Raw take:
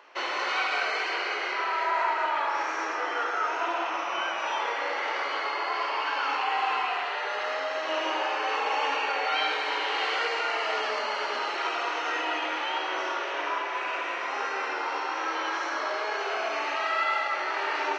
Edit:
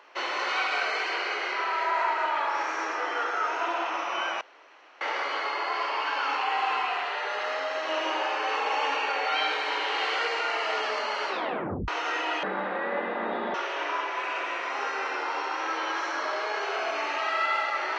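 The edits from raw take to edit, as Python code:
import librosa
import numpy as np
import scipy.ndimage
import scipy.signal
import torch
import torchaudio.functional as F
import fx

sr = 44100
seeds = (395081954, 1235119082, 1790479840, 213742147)

y = fx.edit(x, sr, fx.room_tone_fill(start_s=4.41, length_s=0.6),
    fx.tape_stop(start_s=11.28, length_s=0.6),
    fx.speed_span(start_s=12.43, length_s=0.69, speed=0.62), tone=tone)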